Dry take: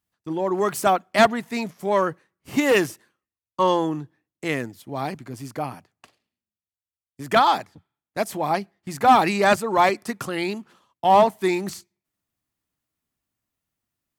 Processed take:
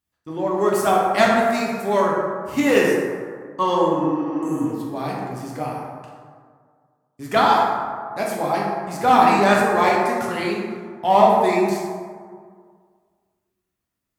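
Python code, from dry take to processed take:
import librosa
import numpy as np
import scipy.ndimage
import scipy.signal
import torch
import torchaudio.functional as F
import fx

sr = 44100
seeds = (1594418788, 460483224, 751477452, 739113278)

y = fx.high_shelf(x, sr, hz=4000.0, db=7.5, at=(1.36, 2.01))
y = fx.spec_repair(y, sr, seeds[0], start_s=3.98, length_s=0.72, low_hz=290.0, high_hz=6000.0, source='before')
y = fx.rev_plate(y, sr, seeds[1], rt60_s=1.9, hf_ratio=0.4, predelay_ms=0, drr_db=-4.0)
y = y * librosa.db_to_amplitude(-3.0)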